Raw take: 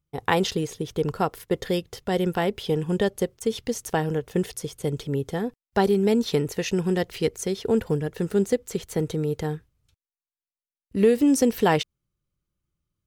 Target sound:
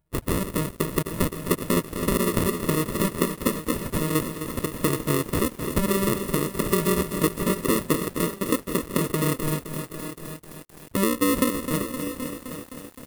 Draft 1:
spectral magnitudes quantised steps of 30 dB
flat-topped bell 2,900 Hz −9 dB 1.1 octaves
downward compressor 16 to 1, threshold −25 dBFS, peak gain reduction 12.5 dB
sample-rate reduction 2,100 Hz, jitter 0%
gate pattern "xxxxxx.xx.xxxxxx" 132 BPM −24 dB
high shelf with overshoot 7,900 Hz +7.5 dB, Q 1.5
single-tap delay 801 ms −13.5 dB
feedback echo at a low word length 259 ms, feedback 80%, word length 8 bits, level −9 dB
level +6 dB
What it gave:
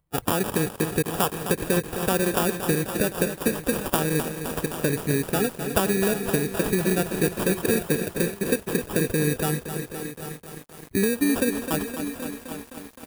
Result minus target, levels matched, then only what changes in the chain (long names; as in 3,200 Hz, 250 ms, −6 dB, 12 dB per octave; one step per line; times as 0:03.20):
sample-rate reduction: distortion −15 dB
change: sample-rate reduction 780 Hz, jitter 0%